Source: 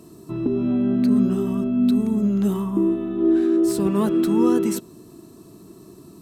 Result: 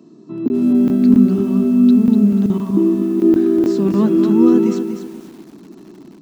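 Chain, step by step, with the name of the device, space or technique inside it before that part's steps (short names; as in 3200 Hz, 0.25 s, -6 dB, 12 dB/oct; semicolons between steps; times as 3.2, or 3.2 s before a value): call with lost packets (HPF 180 Hz 24 dB/oct; downsampling 16000 Hz; AGC gain up to 4.5 dB; packet loss packets of 20 ms random); graphic EQ 125/250/8000 Hz +7/+8/-4 dB; lo-fi delay 0.245 s, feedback 35%, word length 6-bit, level -7.5 dB; gain -4.5 dB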